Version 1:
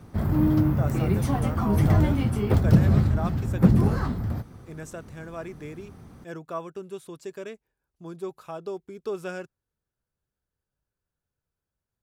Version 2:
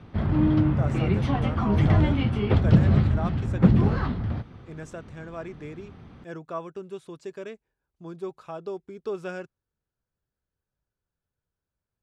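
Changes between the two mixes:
speech: add air absorption 68 m; background: add synth low-pass 3200 Hz, resonance Q 1.9

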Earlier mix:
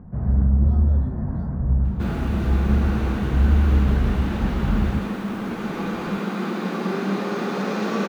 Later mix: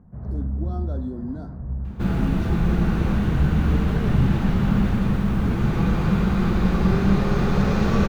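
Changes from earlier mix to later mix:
speech +6.0 dB; first sound -9.0 dB; second sound: remove steep high-pass 210 Hz 36 dB/oct

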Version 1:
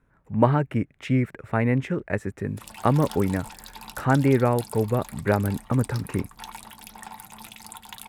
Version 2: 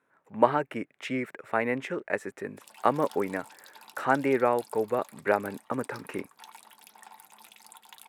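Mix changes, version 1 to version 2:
background -9.0 dB; master: add HPF 400 Hz 12 dB/oct

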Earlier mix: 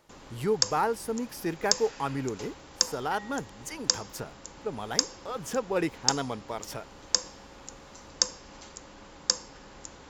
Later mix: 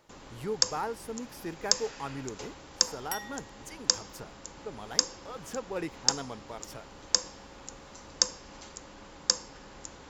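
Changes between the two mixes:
speech -7.0 dB; second sound: remove Gaussian blur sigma 2.7 samples

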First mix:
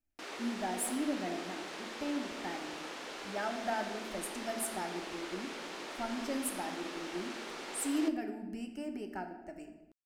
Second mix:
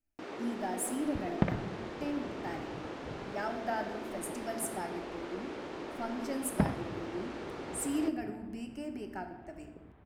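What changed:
first sound: add tilt -4 dB/oct; second sound: unmuted

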